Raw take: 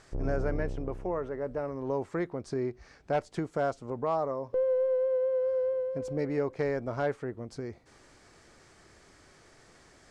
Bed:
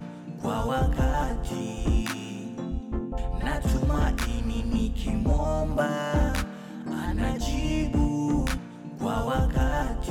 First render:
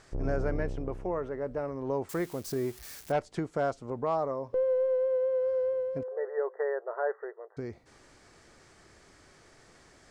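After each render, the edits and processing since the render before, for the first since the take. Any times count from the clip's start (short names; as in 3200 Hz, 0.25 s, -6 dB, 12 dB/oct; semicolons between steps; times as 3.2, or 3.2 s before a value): 2.09–3.12 switching spikes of -35.5 dBFS; 6.03–7.57 brick-wall FIR band-pass 370–2000 Hz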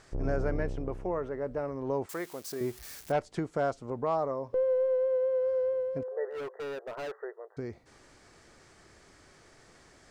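2.06–2.61 HPF 580 Hz 6 dB/oct; 6.3–7.18 overloaded stage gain 35 dB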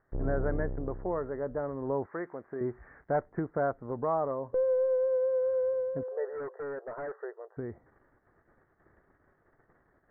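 steep low-pass 1900 Hz 72 dB/oct; gate -57 dBFS, range -14 dB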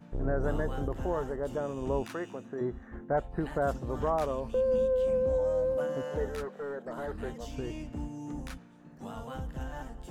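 add bed -14 dB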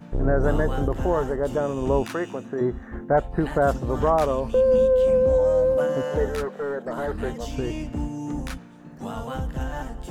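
gain +9 dB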